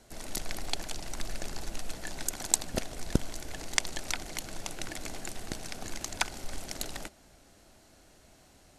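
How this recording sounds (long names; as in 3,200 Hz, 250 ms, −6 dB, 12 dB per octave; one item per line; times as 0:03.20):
background noise floor −59 dBFS
spectral slope −3.0 dB per octave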